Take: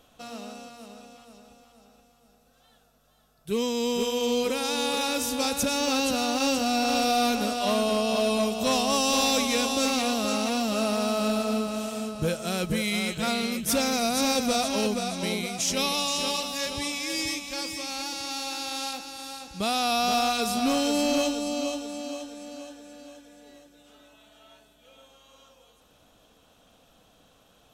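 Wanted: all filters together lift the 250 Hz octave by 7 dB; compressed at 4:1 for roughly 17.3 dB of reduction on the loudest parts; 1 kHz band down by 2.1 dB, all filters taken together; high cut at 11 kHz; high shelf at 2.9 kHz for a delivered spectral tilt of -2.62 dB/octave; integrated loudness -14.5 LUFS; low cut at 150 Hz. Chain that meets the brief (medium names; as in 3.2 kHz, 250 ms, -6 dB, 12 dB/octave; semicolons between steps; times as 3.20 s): high-pass 150 Hz; low-pass 11 kHz; peaking EQ 250 Hz +8.5 dB; peaking EQ 1 kHz -5 dB; treble shelf 2.9 kHz +7.5 dB; compression 4:1, threshold -38 dBFS; trim +22.5 dB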